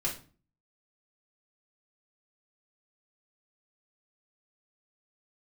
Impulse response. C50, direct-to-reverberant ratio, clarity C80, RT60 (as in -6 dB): 9.0 dB, -4.5 dB, 15.0 dB, 0.40 s